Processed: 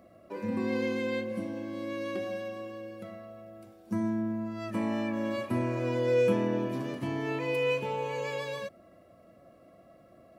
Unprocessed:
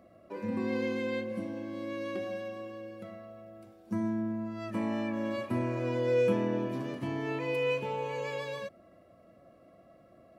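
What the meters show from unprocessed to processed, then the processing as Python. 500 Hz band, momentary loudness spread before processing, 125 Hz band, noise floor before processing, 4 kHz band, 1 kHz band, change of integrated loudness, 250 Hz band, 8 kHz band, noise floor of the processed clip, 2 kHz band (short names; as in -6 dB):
+1.5 dB, 16 LU, +1.5 dB, -59 dBFS, +2.5 dB, +1.5 dB, +1.5 dB, +1.5 dB, n/a, -58 dBFS, +2.0 dB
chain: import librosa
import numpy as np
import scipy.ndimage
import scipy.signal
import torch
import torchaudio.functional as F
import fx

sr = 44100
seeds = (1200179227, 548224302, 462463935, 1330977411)

y = fx.high_shelf(x, sr, hz=6200.0, db=4.5)
y = F.gain(torch.from_numpy(y), 1.5).numpy()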